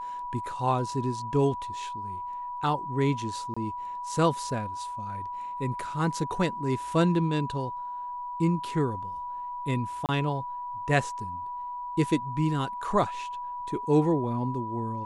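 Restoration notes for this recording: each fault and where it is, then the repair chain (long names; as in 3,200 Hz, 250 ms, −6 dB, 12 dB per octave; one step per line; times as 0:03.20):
whistle 980 Hz −33 dBFS
0:03.54–0:03.56: drop-out 25 ms
0:10.06–0:10.09: drop-out 28 ms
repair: notch filter 980 Hz, Q 30
repair the gap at 0:03.54, 25 ms
repair the gap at 0:10.06, 28 ms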